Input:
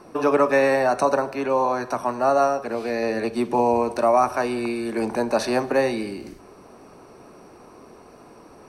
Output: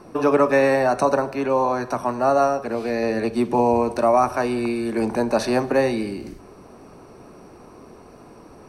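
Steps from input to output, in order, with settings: low shelf 230 Hz +7 dB

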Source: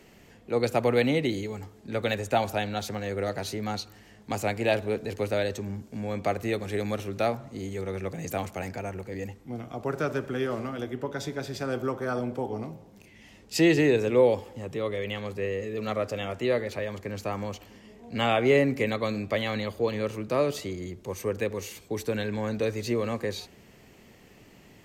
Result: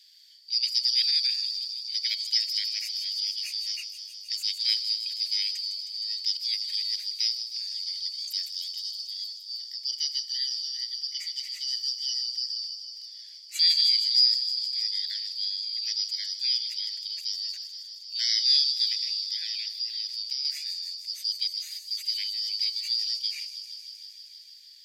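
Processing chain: four-band scrambler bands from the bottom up 4321; 18.92–20.45 compressor, threshold -28 dBFS, peak gain reduction 8.5 dB; Chebyshev high-pass 2000 Hz, order 4; thin delay 0.156 s, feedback 80%, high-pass 4900 Hz, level -7 dB; gain -1.5 dB

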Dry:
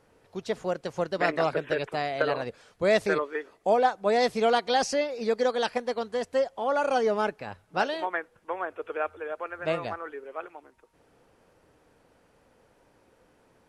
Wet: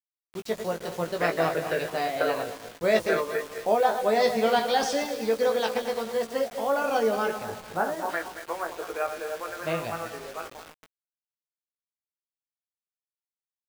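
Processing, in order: regenerating reverse delay 0.112 s, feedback 60%, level -8.5 dB; 2.42–2.84 resonator 90 Hz, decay 0.16 s, harmonics all, mix 60%; 7.43–8.09 LPF 1600 Hz 24 dB/oct; bit-crush 7-bit; doubler 18 ms -5 dB; gain -1.5 dB

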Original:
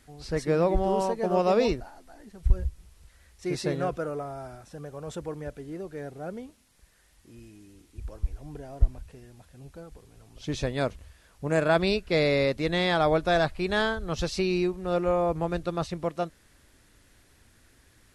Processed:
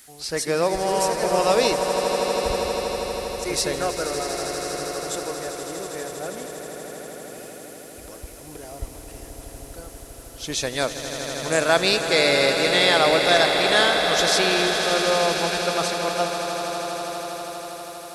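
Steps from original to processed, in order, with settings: RIAA curve recording; swelling echo 80 ms, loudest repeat 8, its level -11.5 dB; gain +5 dB

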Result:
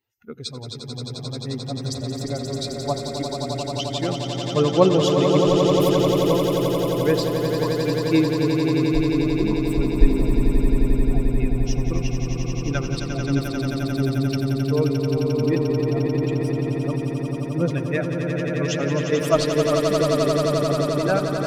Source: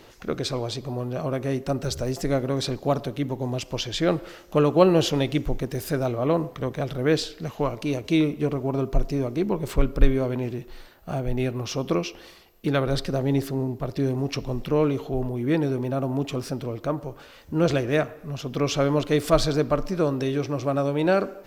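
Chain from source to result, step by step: per-bin expansion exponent 2; swelling echo 88 ms, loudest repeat 8, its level -7 dB; gain +3 dB

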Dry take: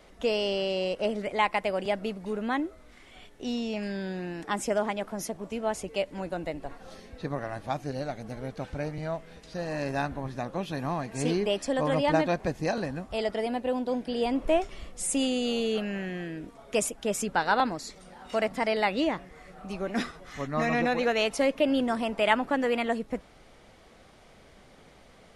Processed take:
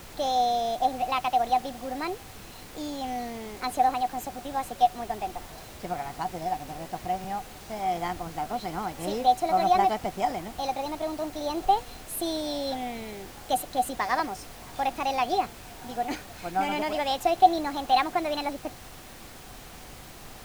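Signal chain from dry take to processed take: small resonant body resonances 600/3300 Hz, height 16 dB, ringing for 85 ms; varispeed +24%; added noise pink -41 dBFS; gain -4 dB

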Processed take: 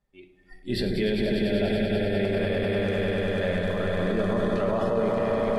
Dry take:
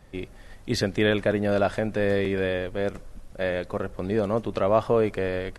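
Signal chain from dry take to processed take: 0.69–2.24 fixed phaser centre 2800 Hz, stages 4; swelling echo 99 ms, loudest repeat 5, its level -6 dB; spectral noise reduction 26 dB; limiter -19 dBFS, peak gain reduction 11 dB; reverb RT60 0.70 s, pre-delay 5 ms, DRR 4.5 dB

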